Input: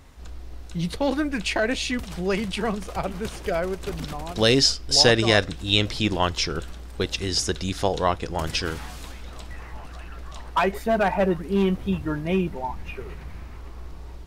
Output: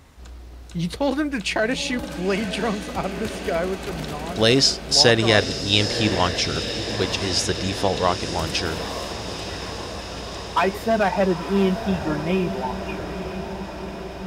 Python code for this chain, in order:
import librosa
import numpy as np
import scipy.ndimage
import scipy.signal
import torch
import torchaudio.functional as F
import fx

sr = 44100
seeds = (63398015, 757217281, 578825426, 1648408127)

p1 = scipy.signal.sosfilt(scipy.signal.butter(2, 51.0, 'highpass', fs=sr, output='sos'), x)
p2 = p1 + fx.echo_diffused(p1, sr, ms=930, feedback_pct=72, wet_db=-10.0, dry=0)
y = p2 * librosa.db_to_amplitude(1.5)